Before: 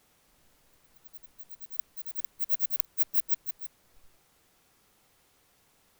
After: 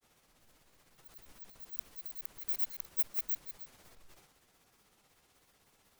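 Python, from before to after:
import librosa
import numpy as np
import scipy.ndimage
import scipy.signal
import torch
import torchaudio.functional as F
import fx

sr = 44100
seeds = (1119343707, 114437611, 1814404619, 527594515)

y = fx.transient(x, sr, attack_db=-2, sustain_db=8)
y = fx.granulator(y, sr, seeds[0], grain_ms=114.0, per_s=16.0, spray_ms=10.0, spread_st=0)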